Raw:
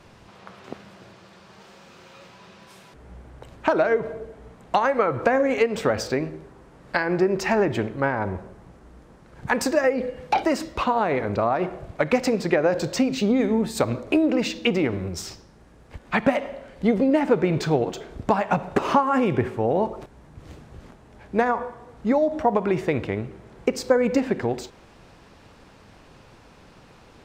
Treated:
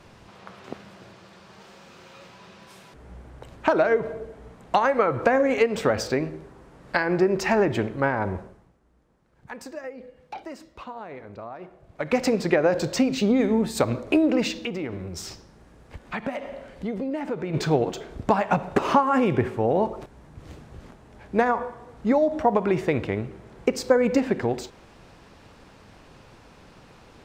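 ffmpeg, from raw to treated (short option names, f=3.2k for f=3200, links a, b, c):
-filter_complex "[0:a]asplit=3[a][b][c];[a]afade=t=out:st=14.63:d=0.02[d];[b]acompressor=threshold=-33dB:ratio=2:attack=3.2:release=140:knee=1:detection=peak,afade=t=in:st=14.63:d=0.02,afade=t=out:st=17.53:d=0.02[e];[c]afade=t=in:st=17.53:d=0.02[f];[d][e][f]amix=inputs=3:normalize=0,asplit=3[g][h][i];[g]atrim=end=8.82,asetpts=PTS-STARTPTS,afade=t=out:st=8.39:d=0.43:c=qua:silence=0.158489[j];[h]atrim=start=8.82:end=11.77,asetpts=PTS-STARTPTS,volume=-16dB[k];[i]atrim=start=11.77,asetpts=PTS-STARTPTS,afade=t=in:d=0.43:c=qua:silence=0.158489[l];[j][k][l]concat=n=3:v=0:a=1"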